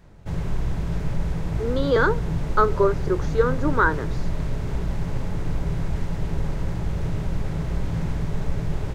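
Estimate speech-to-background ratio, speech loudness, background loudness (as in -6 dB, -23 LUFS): 6.0 dB, -23.0 LUFS, -29.0 LUFS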